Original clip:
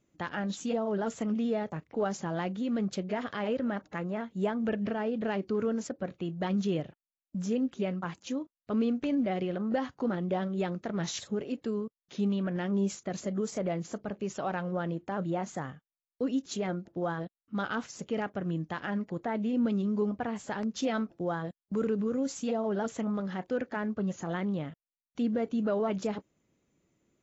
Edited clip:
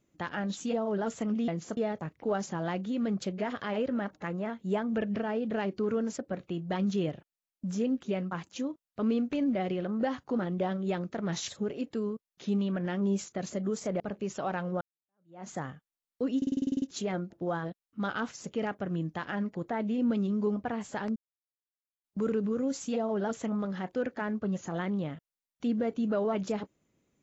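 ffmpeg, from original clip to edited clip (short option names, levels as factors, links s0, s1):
-filter_complex "[0:a]asplit=16[s0][s1][s2][s3][s4][s5][s6][s7][s8][s9][s10][s11][s12][s13][s14][s15];[s0]atrim=end=1.482[s16];[s1]atrim=start=13.708:end=14.002[s17];[s2]atrim=start=1.478:end=13.712[s18];[s3]atrim=start=13.998:end=14.81,asetpts=PTS-STARTPTS,afade=t=out:st=0.808:d=0.004:c=hsin[s19];[s4]atrim=start=14.81:end=16.422,asetpts=PTS-STARTPTS,afade=t=in:d=0.67:c=exp[s20];[s5]atrim=start=16.368:end=16.422[s21];[s6]atrim=start=16.368:end=16.422[s22];[s7]atrim=start=16.368:end=16.422[s23];[s8]atrim=start=16.368:end=16.422[s24];[s9]atrim=start=16.368:end=16.422[s25];[s10]atrim=start=16.368:end=16.422[s26];[s11]atrim=start=16.368:end=16.422[s27];[s12]atrim=start=16.368:end=16.422[s28];[s13]atrim=start=16.368:end=20.71,asetpts=PTS-STARTPTS,afade=t=out:st=4.338:d=0.004:c=hsin[s29];[s14]atrim=start=20.71:end=21.59,asetpts=PTS-STARTPTS,volume=0[s30];[s15]atrim=start=21.59,asetpts=PTS-STARTPTS,afade=t=in:d=0.004:c=hsin[s31];[s16][s17]acrossfade=d=0.004:c1=hsin:c2=hsin[s32];[s32][s18]acrossfade=d=0.004:c1=hsin:c2=hsin[s33];[s19][s20]concat=n=2:v=0:a=1[s34];[s33][s34]acrossfade=d=0.004:c1=hsin:c2=hsin[s35];[s35][s21]acrossfade=d=0.004:c1=hsin:c2=hsin[s36];[s36][s22]acrossfade=d=0.004:c1=hsin:c2=hsin[s37];[s37][s23]acrossfade=d=0.004:c1=hsin:c2=hsin[s38];[s38][s24]acrossfade=d=0.004:c1=hsin:c2=hsin[s39];[s39][s25]acrossfade=d=0.004:c1=hsin:c2=hsin[s40];[s40][s26]acrossfade=d=0.004:c1=hsin:c2=hsin[s41];[s41][s27]acrossfade=d=0.004:c1=hsin:c2=hsin[s42];[s42][s28]acrossfade=d=0.004:c1=hsin:c2=hsin[s43];[s29][s30][s31]concat=n=3:v=0:a=1[s44];[s43][s44]acrossfade=d=0.004:c1=hsin:c2=hsin"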